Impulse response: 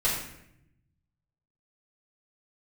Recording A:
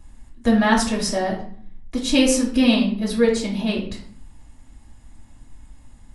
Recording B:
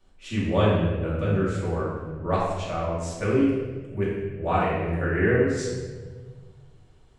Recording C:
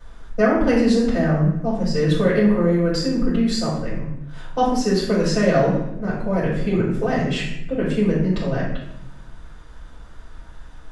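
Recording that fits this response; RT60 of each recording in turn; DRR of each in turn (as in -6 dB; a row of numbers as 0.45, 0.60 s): C; 0.55, 1.5, 0.75 s; -4.5, -8.5, -9.5 dB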